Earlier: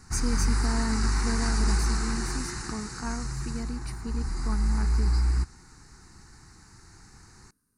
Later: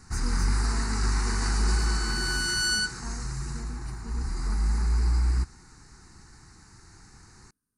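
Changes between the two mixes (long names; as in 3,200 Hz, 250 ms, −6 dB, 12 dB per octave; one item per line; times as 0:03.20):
speech −9.0 dB
second sound: unmuted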